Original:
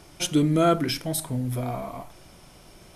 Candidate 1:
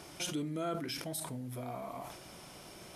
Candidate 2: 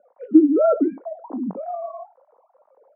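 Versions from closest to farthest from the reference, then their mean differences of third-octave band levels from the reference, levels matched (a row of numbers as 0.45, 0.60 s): 1, 2; 8.0, 18.0 dB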